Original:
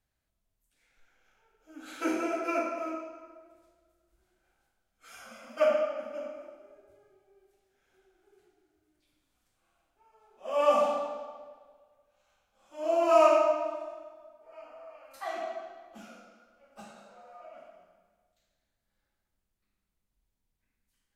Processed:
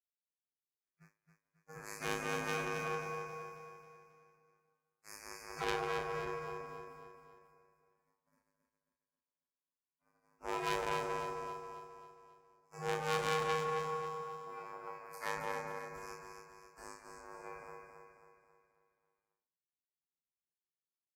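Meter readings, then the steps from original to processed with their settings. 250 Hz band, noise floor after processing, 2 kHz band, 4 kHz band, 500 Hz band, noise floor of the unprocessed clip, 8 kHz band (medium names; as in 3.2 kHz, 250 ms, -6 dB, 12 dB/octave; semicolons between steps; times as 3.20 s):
-10.0 dB, under -85 dBFS, +1.0 dB, +1.0 dB, -12.0 dB, -82 dBFS, no reading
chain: spectral peaks clipped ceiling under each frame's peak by 16 dB; elliptic band-stop 2.3–4.7 kHz; expander -54 dBFS; in parallel at +1 dB: compression, threshold -37 dBFS, peak gain reduction 18.5 dB; on the sum: hard clipper -24 dBFS, distortion -7 dB; robot voice 105 Hz; ring modulator 160 Hz; doubling 30 ms -4.5 dB; feedback delay 270 ms, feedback 48%, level -6 dB; transformer saturation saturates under 2.6 kHz; trim -3 dB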